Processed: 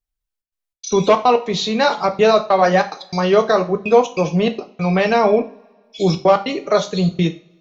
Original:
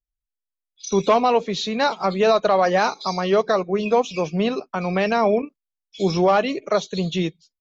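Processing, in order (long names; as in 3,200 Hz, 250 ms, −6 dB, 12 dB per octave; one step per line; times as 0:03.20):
gate pattern "xxxx.xx.xxx.x.xx" 144 BPM −60 dB
coupled-rooms reverb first 0.33 s, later 1.6 s, from −26 dB, DRR 5.5 dB
level +3.5 dB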